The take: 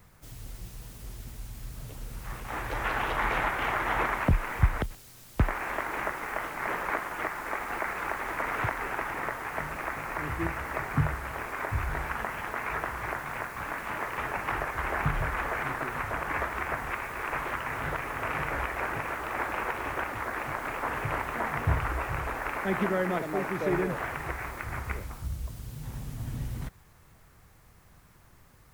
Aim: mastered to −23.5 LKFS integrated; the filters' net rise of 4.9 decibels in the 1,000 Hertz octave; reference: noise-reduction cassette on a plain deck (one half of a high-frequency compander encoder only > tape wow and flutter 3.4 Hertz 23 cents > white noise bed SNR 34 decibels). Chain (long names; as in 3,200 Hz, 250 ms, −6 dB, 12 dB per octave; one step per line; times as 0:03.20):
parametric band 1,000 Hz +6 dB
one half of a high-frequency compander encoder only
tape wow and flutter 3.4 Hz 23 cents
white noise bed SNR 34 dB
level +5.5 dB